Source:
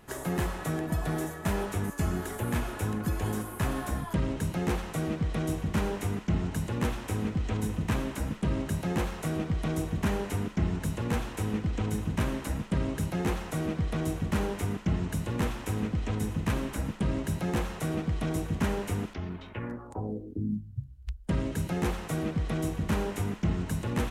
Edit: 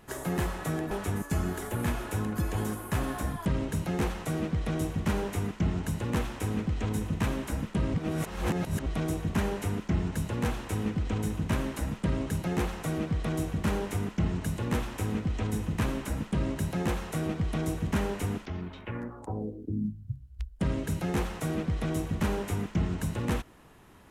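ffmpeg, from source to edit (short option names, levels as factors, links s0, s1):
-filter_complex "[0:a]asplit=4[s0][s1][s2][s3];[s0]atrim=end=0.912[s4];[s1]atrim=start=1.588:end=8.622[s5];[s2]atrim=start=8.618:end=9.542,asetpts=PTS-STARTPTS,areverse[s6];[s3]atrim=start=9.538[s7];[s4][s5]acrossfade=d=0.004:c1=hsin:c2=hsin[s8];[s8][s6]acrossfade=d=0.004:c1=hsin:c2=hsin[s9];[s9][s7]acrossfade=d=0.004:c1=hsin:c2=hsin"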